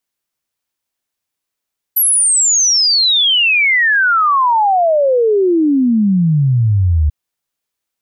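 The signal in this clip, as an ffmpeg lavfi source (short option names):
-f lavfi -i "aevalsrc='0.355*clip(min(t,5.14-t)/0.01,0,1)*sin(2*PI*12000*5.14/log(72/12000)*(exp(log(72/12000)*t/5.14)-1))':d=5.14:s=44100"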